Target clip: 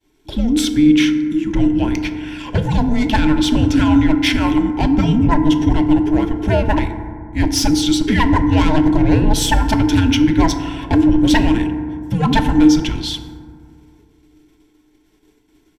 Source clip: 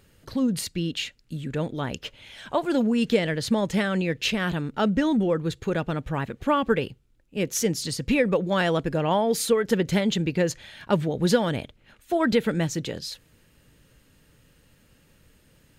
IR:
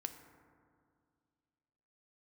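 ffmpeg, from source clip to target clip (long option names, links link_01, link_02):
-filter_complex "[0:a]equalizer=frequency=160:width_type=o:width=0.33:gain=10,equalizer=frequency=500:width_type=o:width=0.33:gain=12,equalizer=frequency=800:width_type=o:width=0.33:gain=-11,equalizer=frequency=4000:width_type=o:width=0.33:gain=7,equalizer=frequency=6300:width_type=o:width=0.33:gain=5,agate=range=-33dB:threshold=-46dB:ratio=3:detection=peak,equalizer=frequency=970:width_type=o:width=2:gain=6.5,asetrate=41625,aresample=44100,atempo=1.05946,aeval=exprs='1.41*sin(PI/2*5.01*val(0)/1.41)':channel_layout=same,aeval=exprs='1.41*(cos(1*acos(clip(val(0)/1.41,-1,1)))-cos(1*PI/2))+0.0316*(cos(5*acos(clip(val(0)/1.41,-1,1)))-cos(5*PI/2))':channel_layout=same,afreqshift=-460,asuperstop=centerf=1200:order=12:qfactor=5.5[link_01];[1:a]atrim=start_sample=2205[link_02];[link_01][link_02]afir=irnorm=-1:irlink=0,volume=-10dB"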